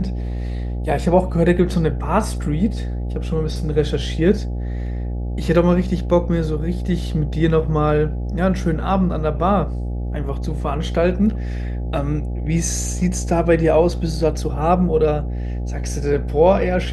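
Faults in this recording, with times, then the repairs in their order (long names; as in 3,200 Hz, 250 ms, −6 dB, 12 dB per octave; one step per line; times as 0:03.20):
mains buzz 60 Hz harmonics 14 −24 dBFS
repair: hum removal 60 Hz, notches 14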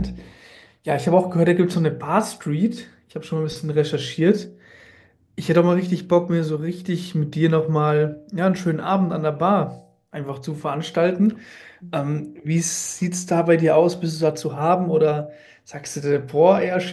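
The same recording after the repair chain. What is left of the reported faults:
none of them is left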